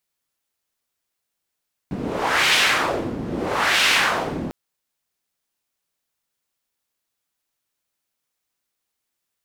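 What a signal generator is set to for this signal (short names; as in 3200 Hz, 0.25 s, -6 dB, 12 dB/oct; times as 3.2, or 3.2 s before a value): wind-like swept noise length 2.60 s, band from 220 Hz, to 2700 Hz, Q 1.3, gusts 2, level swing 11.5 dB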